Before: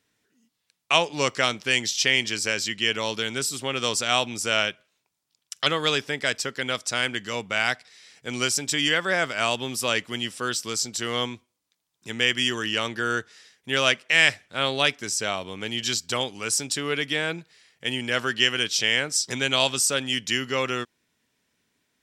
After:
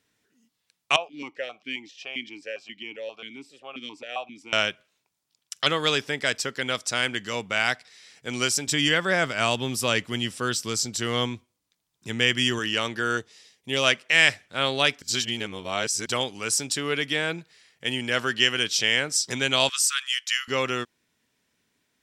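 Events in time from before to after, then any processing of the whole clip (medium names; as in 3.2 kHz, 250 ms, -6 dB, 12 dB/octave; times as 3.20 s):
0.96–4.53 s: stepped vowel filter 7.5 Hz
8.67–12.59 s: bass shelf 190 Hz +8.5 dB
13.17–13.84 s: peaking EQ 1.5 kHz -13.5 dB 0.49 oct
15.02–16.06 s: reverse
19.69–20.48 s: steep high-pass 1.1 kHz 72 dB/octave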